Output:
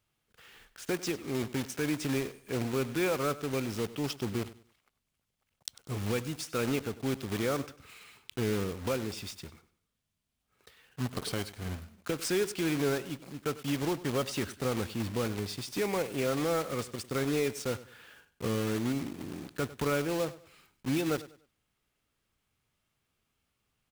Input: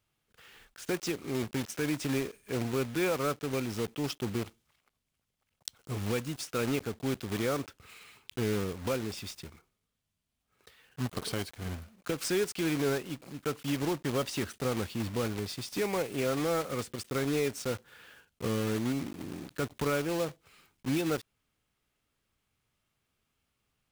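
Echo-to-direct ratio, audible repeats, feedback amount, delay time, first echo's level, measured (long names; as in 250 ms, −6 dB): −16.5 dB, 2, 29%, 98 ms, −17.0 dB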